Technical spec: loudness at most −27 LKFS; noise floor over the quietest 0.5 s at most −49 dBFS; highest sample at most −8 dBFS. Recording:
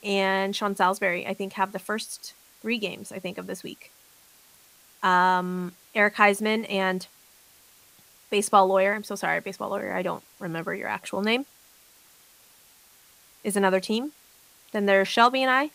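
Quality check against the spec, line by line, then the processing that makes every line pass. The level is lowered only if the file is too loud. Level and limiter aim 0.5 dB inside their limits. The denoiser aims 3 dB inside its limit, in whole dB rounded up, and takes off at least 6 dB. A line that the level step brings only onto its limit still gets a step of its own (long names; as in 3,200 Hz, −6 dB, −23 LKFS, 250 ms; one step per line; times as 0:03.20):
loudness −25.0 LKFS: out of spec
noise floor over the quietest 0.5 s −56 dBFS: in spec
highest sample −4.0 dBFS: out of spec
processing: level −2.5 dB
brickwall limiter −8.5 dBFS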